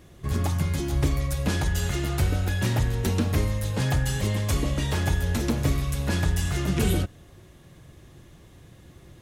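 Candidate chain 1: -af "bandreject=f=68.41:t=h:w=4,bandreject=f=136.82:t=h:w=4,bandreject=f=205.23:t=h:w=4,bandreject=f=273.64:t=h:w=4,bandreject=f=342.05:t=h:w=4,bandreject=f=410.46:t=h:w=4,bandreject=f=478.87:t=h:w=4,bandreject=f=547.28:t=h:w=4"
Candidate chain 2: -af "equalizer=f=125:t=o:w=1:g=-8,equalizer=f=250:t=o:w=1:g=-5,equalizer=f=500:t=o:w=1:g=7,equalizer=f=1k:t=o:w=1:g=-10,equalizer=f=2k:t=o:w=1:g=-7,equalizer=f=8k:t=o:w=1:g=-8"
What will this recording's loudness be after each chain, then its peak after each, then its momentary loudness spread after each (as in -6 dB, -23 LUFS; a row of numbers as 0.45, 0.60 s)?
-26.5, -30.0 LUFS; -12.0, -14.0 dBFS; 3, 3 LU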